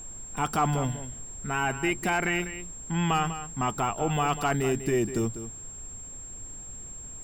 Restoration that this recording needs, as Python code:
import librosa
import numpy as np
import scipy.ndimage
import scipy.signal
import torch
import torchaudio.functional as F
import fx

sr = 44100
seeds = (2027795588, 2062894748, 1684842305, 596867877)

y = fx.notch(x, sr, hz=7500.0, q=30.0)
y = fx.noise_reduce(y, sr, print_start_s=5.89, print_end_s=6.39, reduce_db=30.0)
y = fx.fix_echo_inverse(y, sr, delay_ms=197, level_db=-12.0)